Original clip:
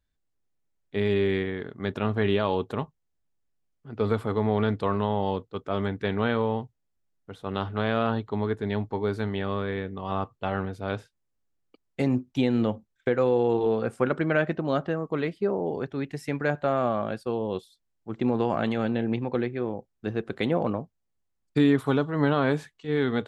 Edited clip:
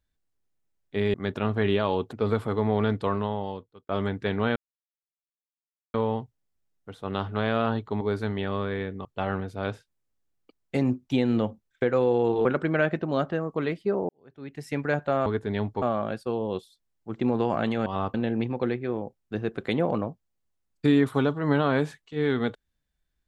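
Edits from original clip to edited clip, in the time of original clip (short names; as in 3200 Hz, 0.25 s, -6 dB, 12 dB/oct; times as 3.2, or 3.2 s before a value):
1.14–1.74 cut
2.73–3.92 cut
4.84–5.68 fade out
6.35 insert silence 1.38 s
8.42–8.98 move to 16.82
10.02–10.3 move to 18.86
13.7–14.01 cut
15.65–16.26 fade in quadratic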